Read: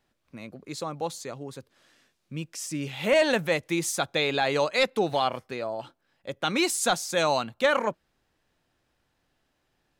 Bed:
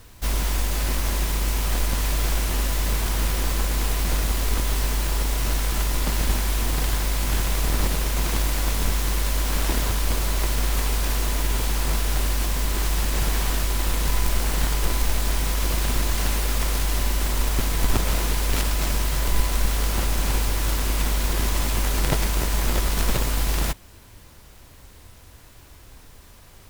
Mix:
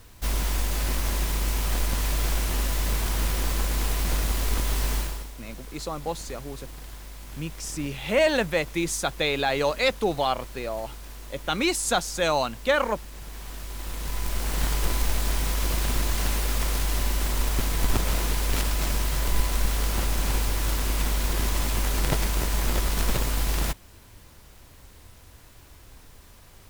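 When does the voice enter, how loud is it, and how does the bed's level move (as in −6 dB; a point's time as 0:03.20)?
5.05 s, +0.5 dB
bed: 0:04.98 −2.5 dB
0:05.33 −18 dB
0:13.20 −18 dB
0:14.68 −2.5 dB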